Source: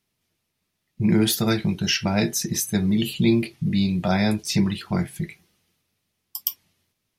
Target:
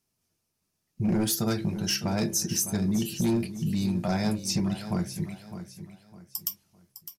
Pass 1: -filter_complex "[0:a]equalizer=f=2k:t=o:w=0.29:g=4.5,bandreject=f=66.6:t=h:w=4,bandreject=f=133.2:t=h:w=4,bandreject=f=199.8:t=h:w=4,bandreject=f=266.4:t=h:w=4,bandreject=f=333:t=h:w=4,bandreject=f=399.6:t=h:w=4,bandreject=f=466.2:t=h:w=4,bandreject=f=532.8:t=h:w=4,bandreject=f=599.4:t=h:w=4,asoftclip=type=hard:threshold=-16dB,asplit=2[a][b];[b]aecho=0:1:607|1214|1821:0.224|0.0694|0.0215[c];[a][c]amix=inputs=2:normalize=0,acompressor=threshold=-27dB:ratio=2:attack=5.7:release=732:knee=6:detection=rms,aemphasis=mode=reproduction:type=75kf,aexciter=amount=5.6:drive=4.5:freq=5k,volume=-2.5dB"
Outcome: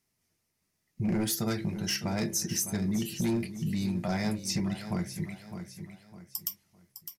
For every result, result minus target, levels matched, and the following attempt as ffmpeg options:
compressor: peak gain reduction +3.5 dB; 2000 Hz band +3.0 dB
-filter_complex "[0:a]equalizer=f=2k:t=o:w=0.29:g=4.5,bandreject=f=66.6:t=h:w=4,bandreject=f=133.2:t=h:w=4,bandreject=f=199.8:t=h:w=4,bandreject=f=266.4:t=h:w=4,bandreject=f=333:t=h:w=4,bandreject=f=399.6:t=h:w=4,bandreject=f=466.2:t=h:w=4,bandreject=f=532.8:t=h:w=4,bandreject=f=599.4:t=h:w=4,asoftclip=type=hard:threshold=-16dB,asplit=2[a][b];[b]aecho=0:1:607|1214|1821:0.224|0.0694|0.0215[c];[a][c]amix=inputs=2:normalize=0,acompressor=threshold=-19.5dB:ratio=2:attack=5.7:release=732:knee=6:detection=rms,aemphasis=mode=reproduction:type=75kf,aexciter=amount=5.6:drive=4.5:freq=5k,volume=-2.5dB"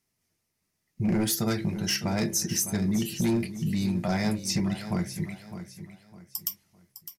2000 Hz band +3.0 dB
-filter_complex "[0:a]equalizer=f=2k:t=o:w=0.29:g=-5.5,bandreject=f=66.6:t=h:w=4,bandreject=f=133.2:t=h:w=4,bandreject=f=199.8:t=h:w=4,bandreject=f=266.4:t=h:w=4,bandreject=f=333:t=h:w=4,bandreject=f=399.6:t=h:w=4,bandreject=f=466.2:t=h:w=4,bandreject=f=532.8:t=h:w=4,bandreject=f=599.4:t=h:w=4,asoftclip=type=hard:threshold=-16dB,asplit=2[a][b];[b]aecho=0:1:607|1214|1821:0.224|0.0694|0.0215[c];[a][c]amix=inputs=2:normalize=0,acompressor=threshold=-19.5dB:ratio=2:attack=5.7:release=732:knee=6:detection=rms,aemphasis=mode=reproduction:type=75kf,aexciter=amount=5.6:drive=4.5:freq=5k,volume=-2.5dB"

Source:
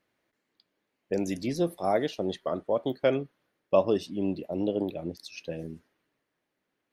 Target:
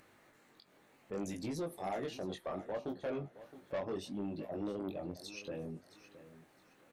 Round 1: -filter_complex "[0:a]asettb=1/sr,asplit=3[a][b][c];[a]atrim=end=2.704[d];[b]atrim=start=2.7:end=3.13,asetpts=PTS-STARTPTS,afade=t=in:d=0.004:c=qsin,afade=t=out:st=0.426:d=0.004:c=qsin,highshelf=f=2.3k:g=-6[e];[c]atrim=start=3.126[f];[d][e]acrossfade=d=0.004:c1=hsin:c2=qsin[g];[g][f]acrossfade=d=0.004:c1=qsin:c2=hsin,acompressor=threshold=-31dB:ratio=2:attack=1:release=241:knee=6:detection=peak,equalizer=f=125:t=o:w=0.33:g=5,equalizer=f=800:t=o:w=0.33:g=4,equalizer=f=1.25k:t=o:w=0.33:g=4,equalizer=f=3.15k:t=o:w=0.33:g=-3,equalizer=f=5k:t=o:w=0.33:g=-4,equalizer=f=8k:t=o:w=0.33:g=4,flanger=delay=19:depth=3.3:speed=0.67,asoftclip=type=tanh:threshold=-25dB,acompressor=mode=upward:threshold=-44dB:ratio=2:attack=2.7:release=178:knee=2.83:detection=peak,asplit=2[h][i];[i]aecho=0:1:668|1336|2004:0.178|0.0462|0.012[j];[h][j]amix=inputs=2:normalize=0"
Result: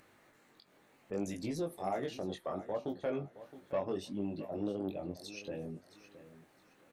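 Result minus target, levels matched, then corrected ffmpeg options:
soft clip: distortion -9 dB
-filter_complex "[0:a]asettb=1/sr,asplit=3[a][b][c];[a]atrim=end=2.704[d];[b]atrim=start=2.7:end=3.13,asetpts=PTS-STARTPTS,afade=t=in:d=0.004:c=qsin,afade=t=out:st=0.426:d=0.004:c=qsin,highshelf=f=2.3k:g=-6[e];[c]atrim=start=3.126[f];[d][e]acrossfade=d=0.004:c1=hsin:c2=qsin[g];[g][f]acrossfade=d=0.004:c1=qsin:c2=hsin,acompressor=threshold=-31dB:ratio=2:attack=1:release=241:knee=6:detection=peak,equalizer=f=125:t=o:w=0.33:g=5,equalizer=f=800:t=o:w=0.33:g=4,equalizer=f=1.25k:t=o:w=0.33:g=4,equalizer=f=3.15k:t=o:w=0.33:g=-3,equalizer=f=5k:t=o:w=0.33:g=-4,equalizer=f=8k:t=o:w=0.33:g=4,flanger=delay=19:depth=3.3:speed=0.67,asoftclip=type=tanh:threshold=-32.5dB,acompressor=mode=upward:threshold=-44dB:ratio=2:attack=2.7:release=178:knee=2.83:detection=peak,asplit=2[h][i];[i]aecho=0:1:668|1336|2004:0.178|0.0462|0.012[j];[h][j]amix=inputs=2:normalize=0"

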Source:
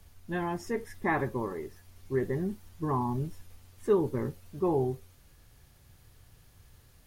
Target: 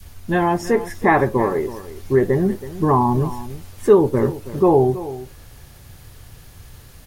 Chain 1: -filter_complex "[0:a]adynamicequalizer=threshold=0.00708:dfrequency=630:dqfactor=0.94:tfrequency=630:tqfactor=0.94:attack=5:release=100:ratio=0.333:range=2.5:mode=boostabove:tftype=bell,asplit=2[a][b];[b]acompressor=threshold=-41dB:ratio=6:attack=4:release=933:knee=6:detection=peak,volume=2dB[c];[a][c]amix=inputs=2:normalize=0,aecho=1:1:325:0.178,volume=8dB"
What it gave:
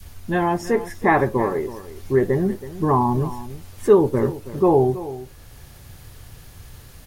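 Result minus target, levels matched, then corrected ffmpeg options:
compressor: peak gain reduction +9 dB
-filter_complex "[0:a]adynamicequalizer=threshold=0.00708:dfrequency=630:dqfactor=0.94:tfrequency=630:tqfactor=0.94:attack=5:release=100:ratio=0.333:range=2.5:mode=boostabove:tftype=bell,asplit=2[a][b];[b]acompressor=threshold=-30dB:ratio=6:attack=4:release=933:knee=6:detection=peak,volume=2dB[c];[a][c]amix=inputs=2:normalize=0,aecho=1:1:325:0.178,volume=8dB"

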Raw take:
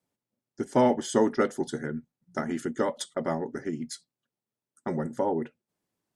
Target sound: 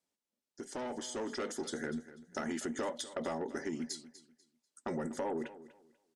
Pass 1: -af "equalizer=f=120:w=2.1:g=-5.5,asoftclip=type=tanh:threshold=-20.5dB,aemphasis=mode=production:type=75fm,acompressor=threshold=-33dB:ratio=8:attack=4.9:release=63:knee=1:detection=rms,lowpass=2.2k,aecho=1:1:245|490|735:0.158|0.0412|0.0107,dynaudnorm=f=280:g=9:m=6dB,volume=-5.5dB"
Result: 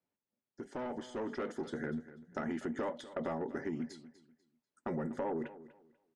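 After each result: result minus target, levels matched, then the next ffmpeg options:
8000 Hz band -16.0 dB; 125 Hz band +4.0 dB
-af "equalizer=f=120:w=2.1:g=-5.5,asoftclip=type=tanh:threshold=-20.5dB,aemphasis=mode=production:type=75fm,acompressor=threshold=-33dB:ratio=8:attack=4.9:release=63:knee=1:detection=rms,lowpass=5.9k,aecho=1:1:245|490|735:0.158|0.0412|0.0107,dynaudnorm=f=280:g=9:m=6dB,volume=-5.5dB"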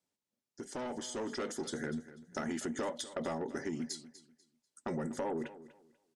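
125 Hz band +3.5 dB
-af "equalizer=f=120:w=2.1:g=-16,asoftclip=type=tanh:threshold=-20.5dB,aemphasis=mode=production:type=75fm,acompressor=threshold=-33dB:ratio=8:attack=4.9:release=63:knee=1:detection=rms,lowpass=5.9k,aecho=1:1:245|490|735:0.158|0.0412|0.0107,dynaudnorm=f=280:g=9:m=6dB,volume=-5.5dB"

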